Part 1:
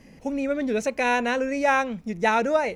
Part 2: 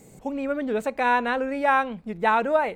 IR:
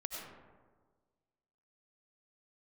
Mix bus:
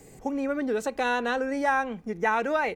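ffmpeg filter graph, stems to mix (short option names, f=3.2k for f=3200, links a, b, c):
-filter_complex "[0:a]volume=-6.5dB[a];[1:a]aecho=1:1:2.6:0.4,volume=-1dB[b];[a][b]amix=inputs=2:normalize=0,acrossover=split=210|1200[c][d][e];[c]acompressor=threshold=-44dB:ratio=4[f];[d]acompressor=threshold=-26dB:ratio=4[g];[e]acompressor=threshold=-26dB:ratio=4[h];[f][g][h]amix=inputs=3:normalize=0"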